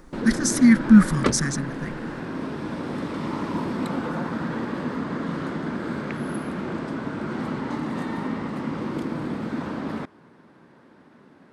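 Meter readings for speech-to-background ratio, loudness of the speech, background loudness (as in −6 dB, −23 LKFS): 11.0 dB, −18.5 LKFS, −29.5 LKFS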